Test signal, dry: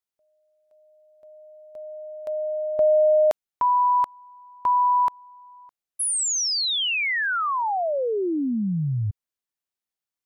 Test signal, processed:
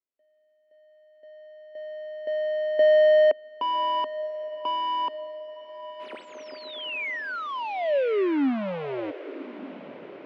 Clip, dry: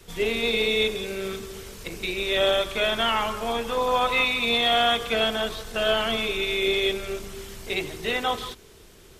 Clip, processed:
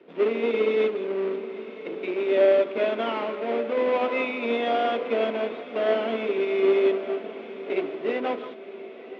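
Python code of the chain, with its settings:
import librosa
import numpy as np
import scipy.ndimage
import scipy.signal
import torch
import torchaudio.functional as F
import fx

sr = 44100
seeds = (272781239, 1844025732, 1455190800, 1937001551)

y = fx.halfwave_hold(x, sr)
y = fx.cabinet(y, sr, low_hz=230.0, low_slope=24, high_hz=2600.0, hz=(270.0, 390.0, 570.0, 820.0, 1200.0, 1700.0), db=(8, 5, 7, -4, -4, -5))
y = fx.echo_diffused(y, sr, ms=1124, feedback_pct=54, wet_db=-14.5)
y = F.gain(torch.from_numpy(y), -6.5).numpy()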